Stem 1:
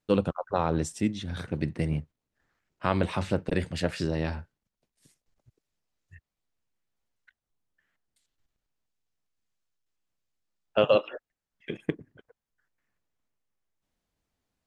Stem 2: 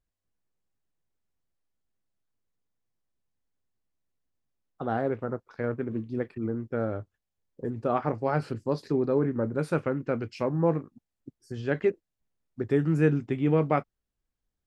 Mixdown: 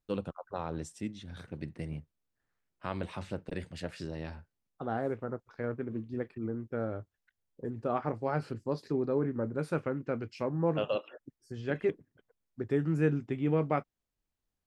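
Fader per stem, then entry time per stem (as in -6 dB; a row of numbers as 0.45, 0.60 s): -10.5, -5.0 dB; 0.00, 0.00 s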